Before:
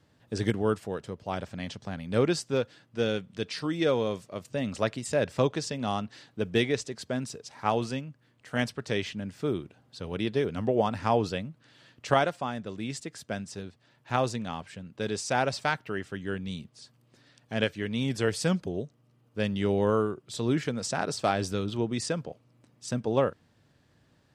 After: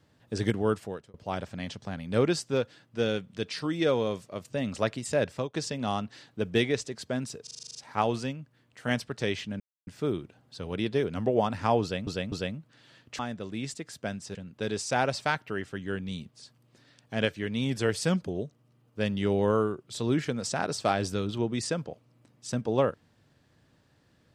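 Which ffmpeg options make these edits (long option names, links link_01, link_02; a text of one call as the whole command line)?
ffmpeg -i in.wav -filter_complex "[0:a]asplit=16[link_01][link_02][link_03][link_04][link_05][link_06][link_07][link_08][link_09][link_10][link_11][link_12][link_13][link_14][link_15][link_16];[link_01]atrim=end=1.14,asetpts=PTS-STARTPTS,afade=type=out:start_time=0.83:duration=0.31[link_17];[link_02]atrim=start=1.14:end=5.54,asetpts=PTS-STARTPTS,afade=type=in:duration=0.004:curve=hsin,afade=type=out:start_time=4.09:duration=0.31:silence=0.0749894[link_18];[link_03]atrim=start=5.54:end=7.472,asetpts=PTS-STARTPTS,afade=type=in:duration=0.004:curve=hsin:silence=0.0749894[link_19];[link_04]atrim=start=7.428:end=7.472[link_20];[link_05]atrim=start=7.428:end=7.472[link_21];[link_06]atrim=start=7.428:end=7.472[link_22];[link_07]atrim=start=7.428:end=7.472[link_23];[link_08]atrim=start=7.428:end=7.472[link_24];[link_09]atrim=start=7.428:end=7.472[link_25];[link_10]atrim=start=7.428:end=7.472[link_26];[link_11]atrim=start=7.428:end=9.28,asetpts=PTS-STARTPTS,afade=type=out:start_time=1.848:duration=0.004:curve=hsin,apad=pad_dur=0.27[link_27];[link_12]atrim=start=9.28:end=11.482,asetpts=PTS-STARTPTS,afade=type=in:duration=0.004:curve=hsin[link_28];[link_13]atrim=start=11.228:end=11.482[link_29];[link_14]atrim=start=11.228:end=12.102[link_30];[link_15]atrim=start=12.448:end=13.612[link_31];[link_16]atrim=start=14.738[link_32];[link_17][link_18][link_19]concat=n=3:v=0:a=1[link_33];[link_33][link_20]acrossfade=duration=0.004:curve1=hsin:curve2=hsin[link_34];[link_34][link_21]acrossfade=duration=0.004:curve1=hsin:curve2=hsin[link_35];[link_35][link_22]acrossfade=duration=0.004:curve1=hsin:curve2=hsin[link_36];[link_36][link_23]acrossfade=duration=0.004:curve1=hsin:curve2=hsin[link_37];[link_37][link_24]acrossfade=duration=0.004:curve1=hsin:curve2=hsin[link_38];[link_38][link_25]acrossfade=duration=0.004:curve1=hsin:curve2=hsin[link_39];[link_39][link_26]acrossfade=duration=0.004:curve1=hsin:curve2=hsin[link_40];[link_27][link_28]concat=n=2:v=0:a=1[link_41];[link_40][link_41]acrossfade=duration=0.004:curve1=hsin:curve2=hsin[link_42];[link_42][link_29]acrossfade=duration=0.004:curve1=hsin:curve2=hsin[link_43];[link_43][link_30]acrossfade=duration=0.004:curve1=hsin:curve2=hsin[link_44];[link_44][link_31]acrossfade=duration=0.004:curve1=hsin:curve2=hsin[link_45];[link_45][link_32]acrossfade=duration=0.004:curve1=hsin:curve2=hsin" out.wav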